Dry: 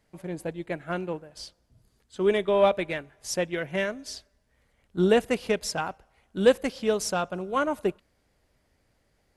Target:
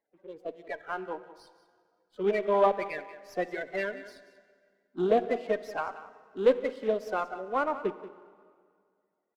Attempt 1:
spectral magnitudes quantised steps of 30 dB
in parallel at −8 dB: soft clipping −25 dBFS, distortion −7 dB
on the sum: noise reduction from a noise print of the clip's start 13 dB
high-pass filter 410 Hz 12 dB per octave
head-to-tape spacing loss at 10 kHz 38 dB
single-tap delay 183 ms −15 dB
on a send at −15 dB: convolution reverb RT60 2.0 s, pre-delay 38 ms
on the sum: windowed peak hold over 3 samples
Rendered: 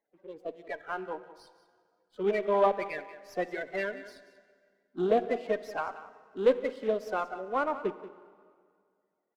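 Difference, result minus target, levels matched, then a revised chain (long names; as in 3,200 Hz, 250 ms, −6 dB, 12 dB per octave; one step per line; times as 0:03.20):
soft clipping: distortion +9 dB
spectral magnitudes quantised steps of 30 dB
in parallel at −8 dB: soft clipping −15 dBFS, distortion −16 dB
on the sum: noise reduction from a noise print of the clip's start 13 dB
high-pass filter 410 Hz 12 dB per octave
head-to-tape spacing loss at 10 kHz 38 dB
single-tap delay 183 ms −15 dB
on a send at −15 dB: convolution reverb RT60 2.0 s, pre-delay 38 ms
on the sum: windowed peak hold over 3 samples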